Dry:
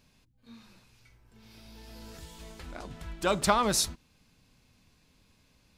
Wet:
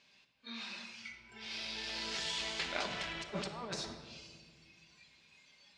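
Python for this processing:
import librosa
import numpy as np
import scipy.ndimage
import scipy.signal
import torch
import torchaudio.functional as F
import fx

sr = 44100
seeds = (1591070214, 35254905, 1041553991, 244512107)

y = fx.law_mismatch(x, sr, coded='mu')
y = fx.weighting(y, sr, curve='ITU-R 468')
y = fx.env_lowpass(y, sr, base_hz=2500.0, full_db=-18.5)
y = fx.noise_reduce_blind(y, sr, reduce_db=13)
y = fx.env_lowpass_down(y, sr, base_hz=770.0, full_db=-19.5)
y = fx.peak_eq(y, sr, hz=1300.0, db=-5.0, octaves=0.98)
y = fx.over_compress(y, sr, threshold_db=-40.0, ratio=-0.5)
y = fx.room_shoebox(y, sr, seeds[0], volume_m3=2200.0, walls='mixed', distance_m=1.2)
y = y * librosa.db_to_amplitude(1.5)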